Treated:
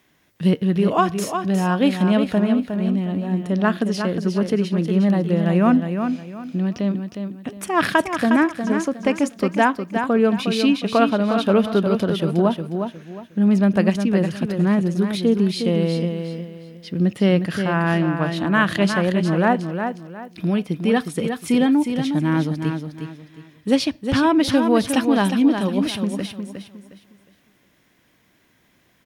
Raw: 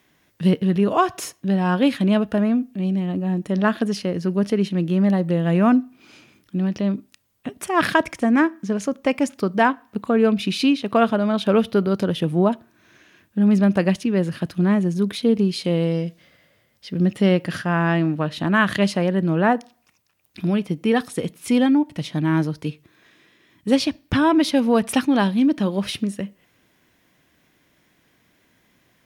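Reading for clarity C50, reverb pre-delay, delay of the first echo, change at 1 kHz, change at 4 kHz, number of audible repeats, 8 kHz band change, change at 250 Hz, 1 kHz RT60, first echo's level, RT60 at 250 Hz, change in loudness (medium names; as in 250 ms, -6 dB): no reverb, no reverb, 360 ms, +1.0 dB, +1.0 dB, 3, +1.0 dB, +1.0 dB, no reverb, -7.0 dB, no reverb, +0.5 dB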